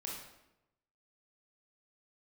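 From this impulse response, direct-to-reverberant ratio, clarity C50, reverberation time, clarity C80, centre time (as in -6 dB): -3.0 dB, 1.5 dB, 0.90 s, 5.0 dB, 55 ms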